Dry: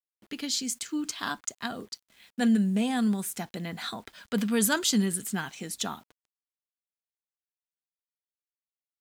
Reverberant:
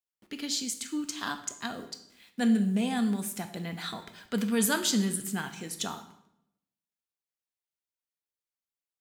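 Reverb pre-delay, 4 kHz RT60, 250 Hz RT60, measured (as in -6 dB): 17 ms, 0.65 s, 0.90 s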